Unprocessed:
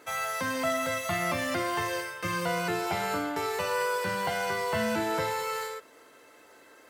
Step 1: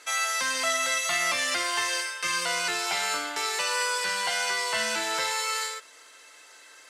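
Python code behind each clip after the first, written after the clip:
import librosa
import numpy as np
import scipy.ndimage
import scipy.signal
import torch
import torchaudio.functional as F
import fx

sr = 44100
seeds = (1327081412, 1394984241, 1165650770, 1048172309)

y = fx.weighting(x, sr, curve='ITU-R 468')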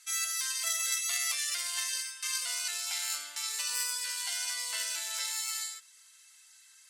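y = fx.cheby_harmonics(x, sr, harmonics=(3, 6), levels_db=(-14, -30), full_scale_db=-13.5)
y = F.preemphasis(torch.from_numpy(y), 0.97).numpy()
y = fx.spec_gate(y, sr, threshold_db=-25, keep='strong')
y = y * librosa.db_to_amplitude(5.5)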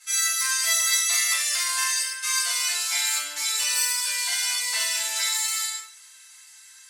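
y = fx.room_shoebox(x, sr, seeds[0], volume_m3=60.0, walls='mixed', distance_m=2.2)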